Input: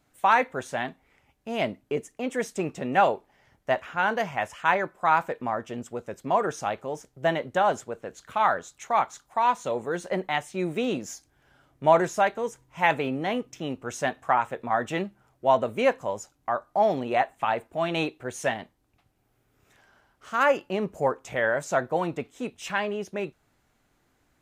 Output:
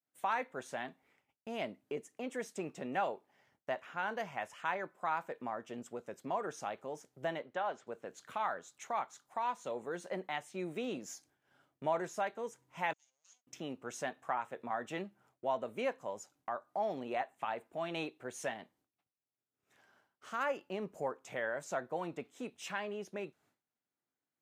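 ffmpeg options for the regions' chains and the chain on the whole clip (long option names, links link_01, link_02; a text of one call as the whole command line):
ffmpeg -i in.wav -filter_complex "[0:a]asettb=1/sr,asplit=3[link_01][link_02][link_03];[link_01]atrim=end=7.424[link_04];[link_02]atrim=start=7.42:end=7.87,asetpts=PTS-STARTPTS,afade=type=in:duration=0.004:curve=qsin,afade=type=out:start_time=0.446:duration=0.004:curve=qsin,lowpass=3900,lowshelf=frequency=280:gain=-10.5[link_05];[link_03]atrim=start=7.866[link_06];[link_04][link_05]acrossfade=duration=0.004:curve1=hsin:curve2=qsin[link_07];[link_07][link_06]acrossfade=duration=0.004:curve1=qsin:curve2=hsin,asettb=1/sr,asplit=3[link_08][link_09][link_10];[link_08]atrim=end=12.934[link_11];[link_09]atrim=start=12.93:end=13.47,asetpts=PTS-STARTPTS,afade=type=in:duration=0.004:curve=qsin,afade=type=out:start_time=0.536:duration=0.004:curve=qsin,aeval=exprs='abs(val(0))':channel_layout=same,bandpass=frequency=6600:width_type=q:width=16[link_12];[link_10]atrim=start=13.466[link_13];[link_11][link_12]acrossfade=duration=0.004:curve1=hsin:curve2=qsin[link_14];[link_14][link_13]acrossfade=duration=0.004:curve1=qsin:curve2=hsin,highpass=160,agate=range=-33dB:threshold=-57dB:ratio=3:detection=peak,acompressor=threshold=-40dB:ratio=1.5,volume=-5.5dB" out.wav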